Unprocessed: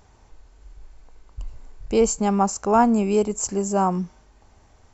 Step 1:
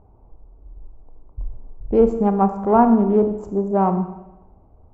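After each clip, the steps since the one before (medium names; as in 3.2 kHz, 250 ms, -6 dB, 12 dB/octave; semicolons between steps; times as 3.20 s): local Wiener filter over 25 samples; low-pass 1.1 kHz 12 dB/octave; reverberation RT60 0.95 s, pre-delay 27 ms, DRR 7.5 dB; trim +3.5 dB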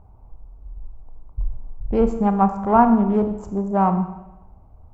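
peaking EQ 380 Hz -10.5 dB 1.6 oct; trim +4.5 dB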